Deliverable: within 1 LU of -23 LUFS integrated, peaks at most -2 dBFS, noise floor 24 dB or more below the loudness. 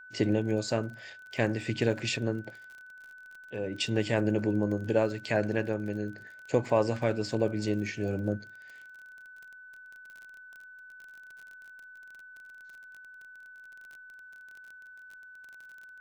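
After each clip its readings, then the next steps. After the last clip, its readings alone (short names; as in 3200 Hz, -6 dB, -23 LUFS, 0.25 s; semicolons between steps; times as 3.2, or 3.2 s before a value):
ticks 31/s; steady tone 1500 Hz; tone level -47 dBFS; loudness -30.5 LUFS; peak -12.0 dBFS; loudness target -23.0 LUFS
-> de-click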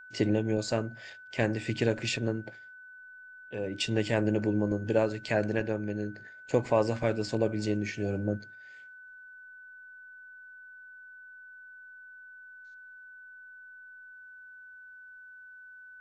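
ticks 0/s; steady tone 1500 Hz; tone level -47 dBFS
-> notch 1500 Hz, Q 30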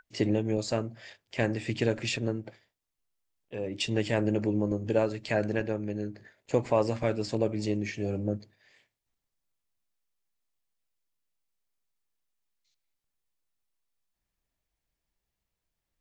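steady tone none; loudness -30.5 LUFS; peak -12.0 dBFS; loudness target -23.0 LUFS
-> gain +7.5 dB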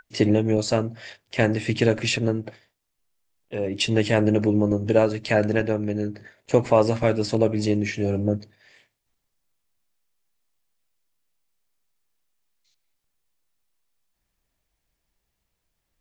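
loudness -23.0 LUFS; peak -4.5 dBFS; noise floor -78 dBFS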